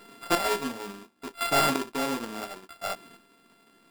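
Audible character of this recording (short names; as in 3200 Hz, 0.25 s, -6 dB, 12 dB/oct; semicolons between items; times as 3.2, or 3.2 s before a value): a buzz of ramps at a fixed pitch in blocks of 32 samples; chopped level 0.71 Hz, depth 65%, duty 25%; aliases and images of a low sample rate 6200 Hz, jitter 0%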